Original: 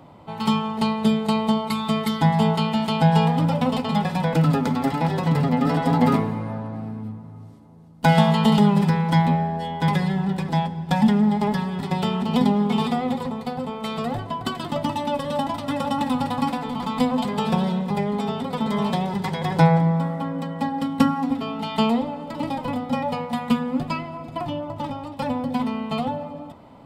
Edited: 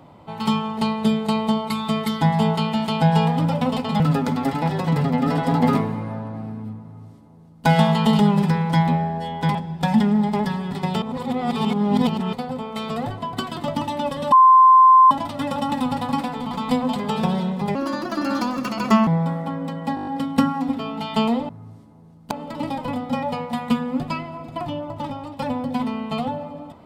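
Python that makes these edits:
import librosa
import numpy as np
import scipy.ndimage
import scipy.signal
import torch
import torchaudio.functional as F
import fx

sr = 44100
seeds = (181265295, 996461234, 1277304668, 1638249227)

y = fx.edit(x, sr, fx.cut(start_s=4.0, length_s=0.39),
    fx.duplicate(start_s=7.23, length_s=0.82, to_s=22.11),
    fx.cut(start_s=9.94, length_s=0.69),
    fx.reverse_span(start_s=12.1, length_s=1.31),
    fx.insert_tone(at_s=15.4, length_s=0.79, hz=1040.0, db=-7.5),
    fx.speed_span(start_s=18.04, length_s=1.77, speed=1.34),
    fx.stutter(start_s=20.69, slice_s=0.02, count=7), tone=tone)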